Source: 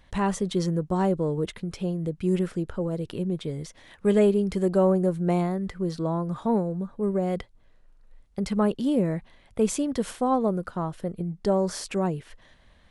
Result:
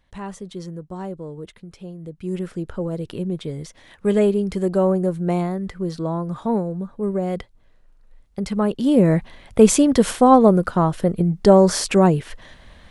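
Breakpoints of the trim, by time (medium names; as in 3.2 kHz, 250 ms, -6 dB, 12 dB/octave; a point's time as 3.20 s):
1.94 s -7.5 dB
2.74 s +2.5 dB
8.67 s +2.5 dB
9.14 s +11.5 dB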